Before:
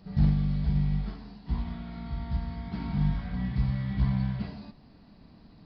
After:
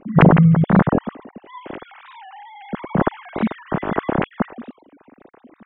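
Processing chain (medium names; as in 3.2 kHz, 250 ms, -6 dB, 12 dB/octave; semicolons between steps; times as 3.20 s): formants replaced by sine waves; bass shelf 320 Hz +3.5 dB; saturation -9.5 dBFS, distortion -22 dB; warped record 45 rpm, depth 250 cents; trim +8 dB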